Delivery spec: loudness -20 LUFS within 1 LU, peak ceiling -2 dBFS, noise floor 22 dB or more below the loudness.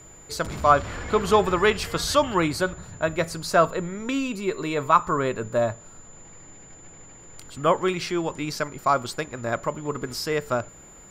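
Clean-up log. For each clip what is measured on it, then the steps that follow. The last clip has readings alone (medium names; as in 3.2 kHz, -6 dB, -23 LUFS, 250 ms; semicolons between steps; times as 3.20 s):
steady tone 7.1 kHz; tone level -47 dBFS; loudness -24.5 LUFS; peak level -3.5 dBFS; loudness target -20.0 LUFS
-> band-stop 7.1 kHz, Q 30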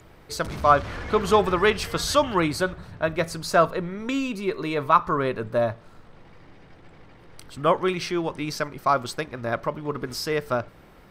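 steady tone not found; loudness -24.5 LUFS; peak level -3.5 dBFS; loudness target -20.0 LUFS
-> trim +4.5 dB; peak limiter -2 dBFS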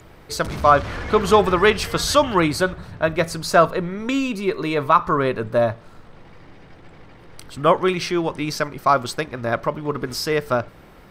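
loudness -20.0 LUFS; peak level -2.0 dBFS; noise floor -46 dBFS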